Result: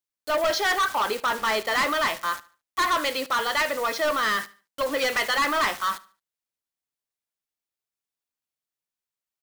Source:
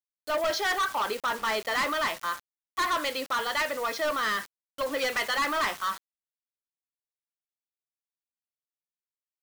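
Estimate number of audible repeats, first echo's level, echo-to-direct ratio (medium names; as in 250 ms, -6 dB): 2, -20.0 dB, -19.5 dB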